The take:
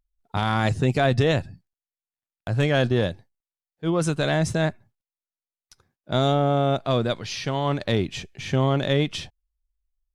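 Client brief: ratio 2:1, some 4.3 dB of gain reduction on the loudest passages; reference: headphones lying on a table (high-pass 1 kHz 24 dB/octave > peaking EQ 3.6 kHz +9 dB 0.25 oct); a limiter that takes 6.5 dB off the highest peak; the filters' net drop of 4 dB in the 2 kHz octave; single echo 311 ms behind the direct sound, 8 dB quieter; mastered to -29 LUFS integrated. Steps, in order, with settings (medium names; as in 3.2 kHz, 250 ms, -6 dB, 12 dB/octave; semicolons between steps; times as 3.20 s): peaking EQ 2 kHz -5.5 dB; compression 2:1, threshold -24 dBFS; peak limiter -20.5 dBFS; high-pass 1 kHz 24 dB/octave; peaking EQ 3.6 kHz +9 dB 0.25 oct; delay 311 ms -8 dB; trim +6.5 dB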